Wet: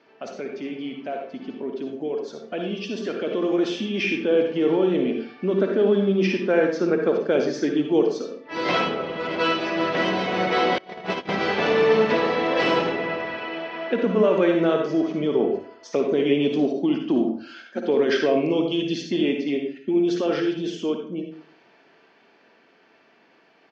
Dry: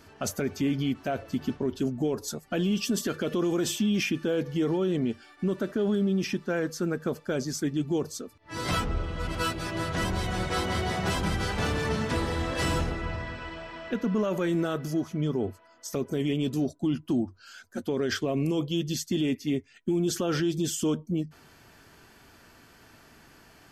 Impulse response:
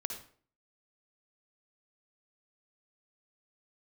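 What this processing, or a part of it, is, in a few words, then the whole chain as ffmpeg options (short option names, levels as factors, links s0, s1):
far laptop microphone: -filter_complex "[1:a]atrim=start_sample=2205[s0];[0:a][s0]afir=irnorm=-1:irlink=0,highpass=f=170:w=0.5412,highpass=f=170:w=1.3066,dynaudnorm=f=260:g=31:m=3.35,lowpass=f=8100:w=0.5412,lowpass=f=8100:w=1.3066,asettb=1/sr,asplit=3[s1][s2][s3];[s1]atrim=end=10.784[s4];[s2]atrim=start=10.78:end=11.29,asetpts=PTS-STARTPTS,afade=t=in:d=0.004:c=qsin,afade=t=out:st=0.506:d=0.004:c=qsin,agate=range=0.0501:threshold=0.158:ratio=16:detection=peak[s5];[s3]atrim=start=11.286[s6];[s4][s5]acrossfade=d=0.004:c1=hsin:c2=qsin[s7];[s7][s6]acrossfade=d=0.004:c1=qsin:c2=hsin,firequalizer=gain_entry='entry(160,0);entry(470,10);entry(1400,3);entry(2200,9);entry(5800,-5);entry(8500,-26)':delay=0.05:min_phase=1,volume=0.376"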